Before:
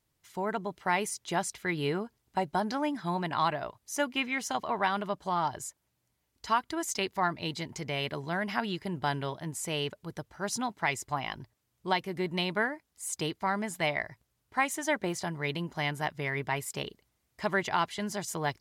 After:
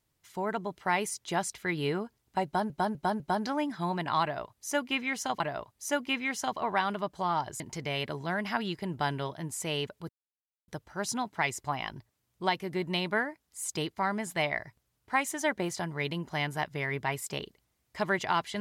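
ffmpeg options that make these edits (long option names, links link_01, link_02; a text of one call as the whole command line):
ffmpeg -i in.wav -filter_complex "[0:a]asplit=7[link_01][link_02][link_03][link_04][link_05][link_06][link_07];[link_01]atrim=end=2.702[link_08];[link_02]atrim=start=2.448:end=2.702[link_09];[link_03]atrim=start=2.448:end=2.702[link_10];[link_04]atrim=start=2.448:end=4.652[link_11];[link_05]atrim=start=3.468:end=5.672[link_12];[link_06]atrim=start=7.628:end=10.12,asetpts=PTS-STARTPTS,afade=type=out:start_time=2.488:duration=0.004:curve=hsin,apad=pad_dur=0.59[link_13];[link_07]atrim=start=10.12,asetpts=PTS-STARTPTS,afade=type=in:duration=0.004:curve=hsin[link_14];[link_08][link_09]acrossfade=duration=0.004:curve1=hsin:curve2=hsin[link_15];[link_15][link_10]acrossfade=duration=0.004:curve1=hsin:curve2=hsin[link_16];[link_16][link_11]acrossfade=duration=0.004:curve1=hsin:curve2=hsin[link_17];[link_17][link_12]acrossfade=duration=0.004:curve1=hsin:curve2=hsin[link_18];[link_13][link_14]concat=n=2:v=0:a=1[link_19];[link_18][link_19]acrossfade=duration=0.004:curve1=hsin:curve2=hsin" out.wav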